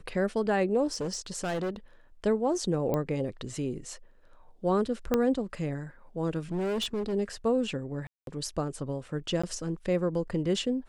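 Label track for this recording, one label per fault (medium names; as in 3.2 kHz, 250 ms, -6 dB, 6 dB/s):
0.920000	1.760000	clipped -28 dBFS
2.940000	2.940000	pop -17 dBFS
5.140000	5.140000	pop -12 dBFS
6.510000	7.140000	clipped -27 dBFS
8.070000	8.270000	dropout 202 ms
9.420000	9.440000	dropout 15 ms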